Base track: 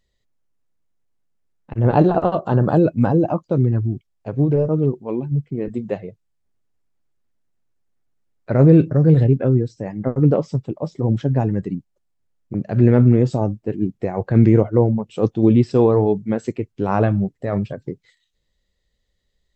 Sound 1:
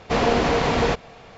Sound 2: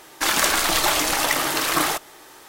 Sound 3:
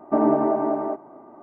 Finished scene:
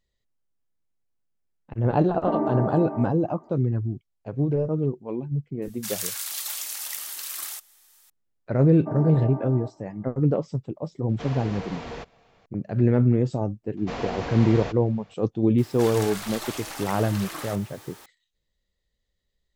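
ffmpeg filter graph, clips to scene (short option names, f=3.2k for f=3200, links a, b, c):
-filter_complex "[3:a]asplit=2[a][b];[2:a]asplit=2[c][d];[1:a]asplit=2[e][f];[0:a]volume=-6.5dB[g];[c]aderivative[h];[e]asoftclip=type=tanh:threshold=-12dB[i];[d]aeval=exprs='val(0)+0.5*0.0422*sgn(val(0))':c=same[j];[a]atrim=end=1.42,asetpts=PTS-STARTPTS,volume=-6.5dB,afade=t=in:d=0.004:c=hsin,afade=t=out:st=1.416:d=0.004:c=hsin,adelay=2140[k];[h]atrim=end=2.48,asetpts=PTS-STARTPTS,volume=-8.5dB,afade=t=in:d=0.004:c=hsin,afade=t=out:st=2.476:d=0.004:c=hsin,adelay=5620[l];[b]atrim=end=1.42,asetpts=PTS-STARTPTS,volume=-12.5dB,afade=t=in:d=0.004:c=hsin,afade=t=out:st=1.416:d=0.004:c=hsin,adelay=385434S[m];[i]atrim=end=1.37,asetpts=PTS-STARTPTS,volume=-15dB,afade=t=in:d=0.004:c=hsin,afade=t=out:st=1.366:d=0.004:c=hsin,adelay=11090[n];[f]atrim=end=1.37,asetpts=PTS-STARTPTS,volume=-12dB,afade=t=in:d=0.004:c=hsin,afade=t=out:st=1.366:d=0.004:c=hsin,adelay=13770[o];[j]atrim=end=2.48,asetpts=PTS-STARTPTS,volume=-17dB,afade=t=in:d=0.004:c=hsin,afade=t=out:st=2.476:d=0.004:c=hsin,adelay=15580[p];[g][k][l][m][n][o][p]amix=inputs=7:normalize=0"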